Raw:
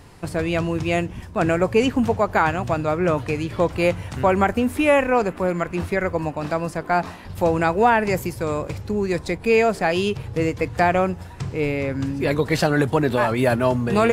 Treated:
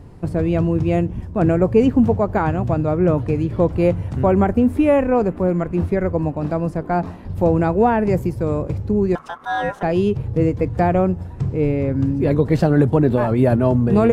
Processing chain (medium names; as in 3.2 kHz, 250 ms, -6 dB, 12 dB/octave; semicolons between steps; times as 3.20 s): 9.15–9.83 s: ring modulator 1.2 kHz; tilt shelf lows +9.5 dB, about 860 Hz; trim -2 dB